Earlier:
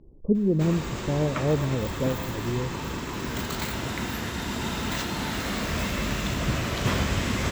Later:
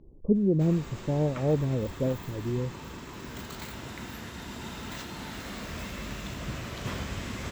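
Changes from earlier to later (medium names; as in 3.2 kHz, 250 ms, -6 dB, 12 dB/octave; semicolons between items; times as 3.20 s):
background -8.5 dB; reverb: off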